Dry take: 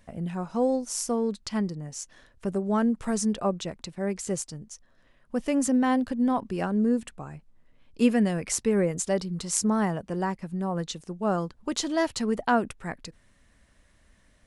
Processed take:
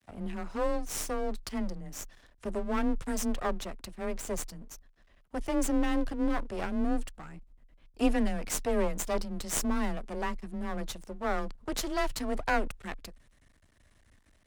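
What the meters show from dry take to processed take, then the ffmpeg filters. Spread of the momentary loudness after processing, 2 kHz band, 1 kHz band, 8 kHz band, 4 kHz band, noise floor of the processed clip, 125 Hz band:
13 LU, -2.0 dB, -4.5 dB, -5.5 dB, -4.0 dB, -64 dBFS, -10.0 dB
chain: -af "aeval=exprs='max(val(0),0)':c=same,afreqshift=20"

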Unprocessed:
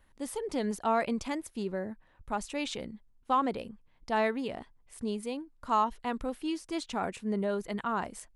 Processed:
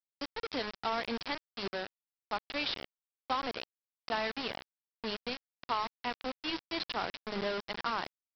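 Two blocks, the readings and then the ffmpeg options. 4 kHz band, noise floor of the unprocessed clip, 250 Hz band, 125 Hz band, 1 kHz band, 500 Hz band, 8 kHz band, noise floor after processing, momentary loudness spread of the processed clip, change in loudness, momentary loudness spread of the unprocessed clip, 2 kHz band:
+6.5 dB, -64 dBFS, -8.5 dB, -8.0 dB, -5.0 dB, -5.5 dB, under -10 dB, under -85 dBFS, 8 LU, -3.5 dB, 12 LU, +1.5 dB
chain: -filter_complex "[0:a]aemphasis=mode=production:type=riaa,bandreject=f=106:t=h:w=4,bandreject=f=212:t=h:w=4,bandreject=f=318:t=h:w=4,bandreject=f=424:t=h:w=4,bandreject=f=530:t=h:w=4,acrossover=split=200[a][b];[b]acompressor=threshold=-29dB:ratio=8[c];[a][c]amix=inputs=2:normalize=0,aresample=11025,acrusher=bits=5:mix=0:aa=0.000001,aresample=44100"

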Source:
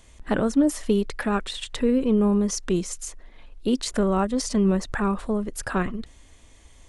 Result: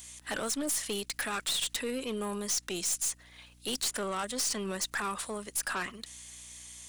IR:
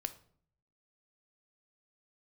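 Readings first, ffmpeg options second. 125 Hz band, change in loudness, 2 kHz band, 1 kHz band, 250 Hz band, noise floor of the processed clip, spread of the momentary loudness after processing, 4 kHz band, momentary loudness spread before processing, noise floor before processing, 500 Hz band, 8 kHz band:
-18.0 dB, -8.0 dB, -2.5 dB, -7.0 dB, -17.5 dB, -59 dBFS, 13 LU, +1.5 dB, 11 LU, -51 dBFS, -12.0 dB, +3.0 dB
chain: -filter_complex "[0:a]aderivative,acrossover=split=200|3400[a][b][c];[c]alimiter=level_in=1dB:limit=-24dB:level=0:latency=1:release=454,volume=-1dB[d];[a][b][d]amix=inputs=3:normalize=0,aeval=exprs='val(0)+0.000251*(sin(2*PI*60*n/s)+sin(2*PI*2*60*n/s)/2+sin(2*PI*3*60*n/s)/3+sin(2*PI*4*60*n/s)/4+sin(2*PI*5*60*n/s)/5)':c=same,asoftclip=type=tanh:threshold=-35.5dB,aeval=exprs='0.0299*(cos(1*acos(clip(val(0)/0.0299,-1,1)))-cos(1*PI/2))+0.00668*(cos(5*acos(clip(val(0)/0.0299,-1,1)))-cos(5*PI/2))+0.0015*(cos(8*acos(clip(val(0)/0.0299,-1,1)))-cos(8*PI/2))':c=same,volume=7dB"

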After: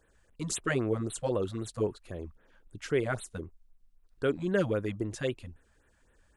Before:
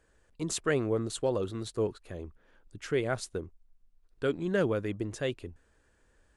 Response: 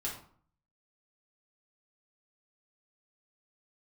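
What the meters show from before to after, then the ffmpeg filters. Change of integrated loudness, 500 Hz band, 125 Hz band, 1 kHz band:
-0.5 dB, -0.5 dB, +1.0 dB, 0.0 dB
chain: -af "afftfilt=real='re*(1-between(b*sr/1024,330*pow(6100/330,0.5+0.5*sin(2*PI*3.8*pts/sr))/1.41,330*pow(6100/330,0.5+0.5*sin(2*PI*3.8*pts/sr))*1.41))':imag='im*(1-between(b*sr/1024,330*pow(6100/330,0.5+0.5*sin(2*PI*3.8*pts/sr))/1.41,330*pow(6100/330,0.5+0.5*sin(2*PI*3.8*pts/sr))*1.41))':win_size=1024:overlap=0.75,volume=1dB"

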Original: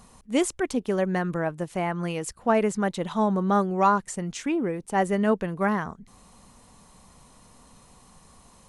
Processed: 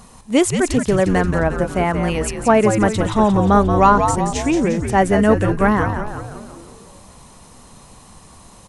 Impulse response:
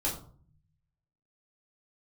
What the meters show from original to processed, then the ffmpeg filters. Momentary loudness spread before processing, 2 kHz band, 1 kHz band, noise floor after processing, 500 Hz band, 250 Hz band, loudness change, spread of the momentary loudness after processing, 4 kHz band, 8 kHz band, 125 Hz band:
7 LU, +9.0 dB, +9.0 dB, -45 dBFS, +9.0 dB, +9.0 dB, +9.0 dB, 7 LU, +9.5 dB, +9.5 dB, +11.5 dB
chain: -filter_complex "[0:a]asplit=8[a][b][c][d][e][f][g][h];[b]adelay=177,afreqshift=-110,volume=-6.5dB[i];[c]adelay=354,afreqshift=-220,volume=-11.4dB[j];[d]adelay=531,afreqshift=-330,volume=-16.3dB[k];[e]adelay=708,afreqshift=-440,volume=-21.1dB[l];[f]adelay=885,afreqshift=-550,volume=-26dB[m];[g]adelay=1062,afreqshift=-660,volume=-30.9dB[n];[h]adelay=1239,afreqshift=-770,volume=-35.8dB[o];[a][i][j][k][l][m][n][o]amix=inputs=8:normalize=0,acontrast=23,volume=3.5dB"

